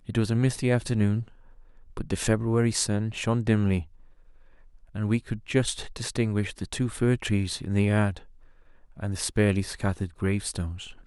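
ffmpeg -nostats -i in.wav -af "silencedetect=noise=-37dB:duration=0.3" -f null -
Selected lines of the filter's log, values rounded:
silence_start: 1.28
silence_end: 1.97 | silence_duration: 0.69
silence_start: 3.83
silence_end: 4.95 | silence_duration: 1.12
silence_start: 8.19
silence_end: 8.99 | silence_duration: 0.80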